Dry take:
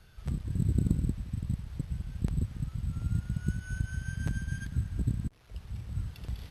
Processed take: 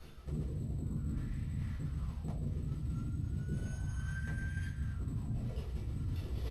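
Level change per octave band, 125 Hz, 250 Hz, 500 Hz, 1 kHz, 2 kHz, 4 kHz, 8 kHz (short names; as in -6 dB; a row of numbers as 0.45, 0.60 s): -5.0, -5.5, -0.5, -0.5, -3.5, -4.5, -7.0 dB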